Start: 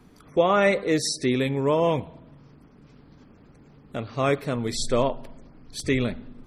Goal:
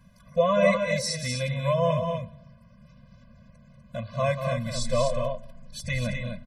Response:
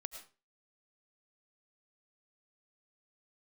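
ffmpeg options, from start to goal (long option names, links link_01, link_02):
-af "aecho=1:1:189.5|247.8:0.355|0.501,afftfilt=real='re*eq(mod(floor(b*sr/1024/240),2),0)':imag='im*eq(mod(floor(b*sr/1024/240),2),0)':win_size=1024:overlap=0.75"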